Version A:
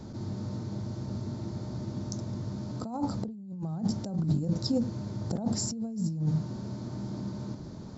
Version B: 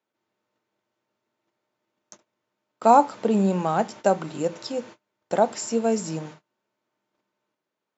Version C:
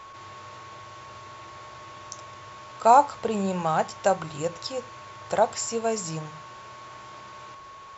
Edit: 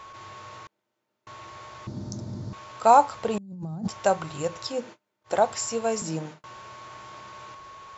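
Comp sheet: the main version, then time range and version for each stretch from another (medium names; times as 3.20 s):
C
0.67–1.27 s: from B
1.87–2.53 s: from A
3.38–3.88 s: from A
4.74–5.32 s: from B, crossfade 0.16 s
6.02–6.44 s: from B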